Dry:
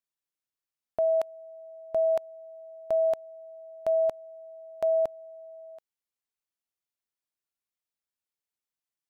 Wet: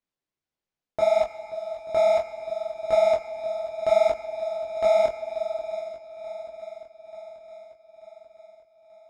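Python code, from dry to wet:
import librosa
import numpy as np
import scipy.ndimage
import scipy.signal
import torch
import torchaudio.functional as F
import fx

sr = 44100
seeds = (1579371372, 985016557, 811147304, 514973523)

p1 = fx.tracing_dist(x, sr, depth_ms=0.33)
p2 = scipy.signal.sosfilt(scipy.signal.butter(2, 48.0, 'highpass', fs=sr, output='sos'), p1)
p3 = fx.doubler(p2, sr, ms=22.0, db=-6)
p4 = fx.sample_hold(p3, sr, seeds[0], rate_hz=1500.0, jitter_pct=0)
p5 = p3 + F.gain(torch.from_numpy(p4), -9.5).numpy()
p6 = fx.air_absorb(p5, sr, metres=88.0)
p7 = fx.echo_swing(p6, sr, ms=886, ratio=1.5, feedback_pct=54, wet_db=-16.0)
p8 = fx.rev_schroeder(p7, sr, rt60_s=3.4, comb_ms=28, drr_db=12.0)
p9 = fx.detune_double(p8, sr, cents=58)
y = F.gain(torch.from_numpy(p9), 6.0).numpy()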